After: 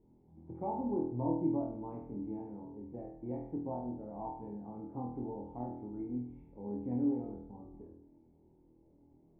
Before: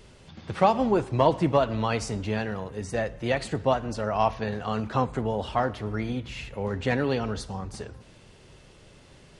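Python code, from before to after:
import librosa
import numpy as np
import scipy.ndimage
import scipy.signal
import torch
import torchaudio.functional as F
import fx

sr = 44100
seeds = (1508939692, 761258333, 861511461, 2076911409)

y = fx.formant_cascade(x, sr, vowel='u')
y = fx.room_flutter(y, sr, wall_m=4.2, rt60_s=0.62)
y = y * librosa.db_to_amplitude(-5.0)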